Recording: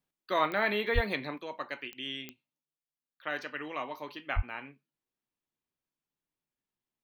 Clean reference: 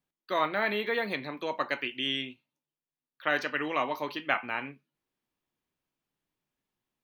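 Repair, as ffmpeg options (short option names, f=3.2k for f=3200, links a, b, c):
-filter_complex "[0:a]adeclick=t=4,asplit=3[a][b][c];[a]afade=t=out:st=0.94:d=0.02[d];[b]highpass=f=140:w=0.5412,highpass=f=140:w=1.3066,afade=t=in:st=0.94:d=0.02,afade=t=out:st=1.06:d=0.02[e];[c]afade=t=in:st=1.06:d=0.02[f];[d][e][f]amix=inputs=3:normalize=0,asplit=3[g][h][i];[g]afade=t=out:st=4.35:d=0.02[j];[h]highpass=f=140:w=0.5412,highpass=f=140:w=1.3066,afade=t=in:st=4.35:d=0.02,afade=t=out:st=4.47:d=0.02[k];[i]afade=t=in:st=4.47:d=0.02[l];[j][k][l]amix=inputs=3:normalize=0,asetnsamples=n=441:p=0,asendcmd='1.38 volume volume 7.5dB',volume=0dB"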